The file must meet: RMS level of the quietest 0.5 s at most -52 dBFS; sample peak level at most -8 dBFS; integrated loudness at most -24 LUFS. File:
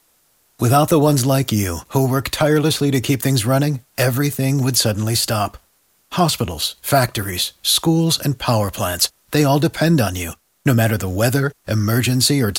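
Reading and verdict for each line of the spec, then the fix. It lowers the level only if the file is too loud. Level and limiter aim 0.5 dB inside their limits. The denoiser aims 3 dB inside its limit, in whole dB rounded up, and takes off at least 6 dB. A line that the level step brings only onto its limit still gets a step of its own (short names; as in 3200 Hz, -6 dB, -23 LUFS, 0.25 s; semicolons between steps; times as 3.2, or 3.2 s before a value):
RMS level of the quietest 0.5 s -60 dBFS: OK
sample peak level -2.0 dBFS: fail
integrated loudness -17.5 LUFS: fail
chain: gain -7 dB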